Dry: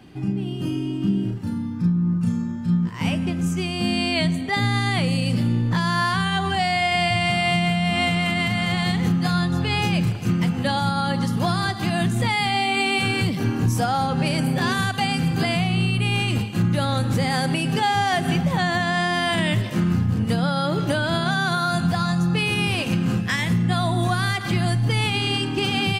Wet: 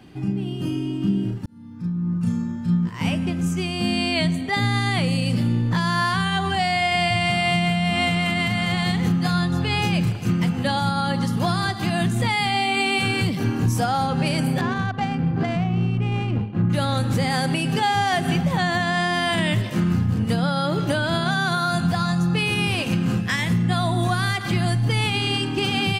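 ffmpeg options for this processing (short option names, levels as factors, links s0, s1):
-filter_complex "[0:a]asettb=1/sr,asplit=3[s0][s1][s2];[s0]atrim=end=14.614[s3];[s1]atrim=start=14.61:end=16.7,asetpts=PTS-STARTPTS,afade=t=in:d=0.004:c=qsin,afade=t=out:st=2.086:d=0.004:c=qsin,adynamicsmooth=sensitivity=0.5:basefreq=1100[s4];[s2]atrim=start=16.696[s5];[s3][s4]acrossfade=d=0.004:c1=hsin:c2=qsin[s6];[s6][s5]acrossfade=d=0.004:c1=qsin:c2=hsin,asplit=2[s7][s8];[s7]atrim=end=1.46,asetpts=PTS-STARTPTS,afade=t=out:st=1.456:d=0.004:c=hsin[s9];[s8]atrim=start=1.46,asetpts=PTS-STARTPTS,afade=t=in:d=0.86[s10];[s9][s10]concat=n=2:v=0:a=1"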